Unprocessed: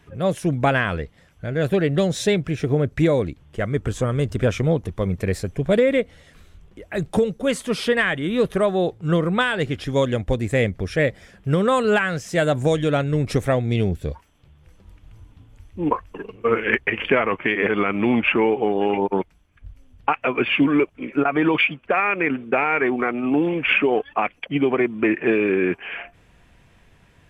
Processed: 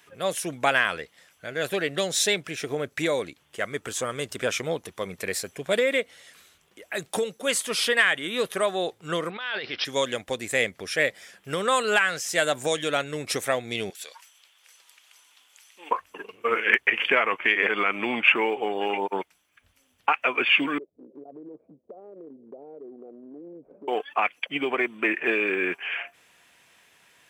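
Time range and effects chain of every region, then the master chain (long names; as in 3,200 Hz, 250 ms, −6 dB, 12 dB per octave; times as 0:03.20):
0:09.30–0:09.85: low-shelf EQ 250 Hz −9.5 dB + compressor whose output falls as the input rises −29 dBFS + bad sample-rate conversion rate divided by 4×, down none, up filtered
0:13.90–0:15.91: parametric band 5,300 Hz +8.5 dB 2.9 octaves + downward compressor 1.5 to 1, threshold −31 dBFS + high-pass filter 780 Hz
0:20.78–0:23.88: Butterworth low-pass 560 Hz + downward compressor 3 to 1, threshold −35 dBFS
whole clip: high-pass filter 350 Hz 6 dB per octave; spectral tilt +3 dB per octave; level −1.5 dB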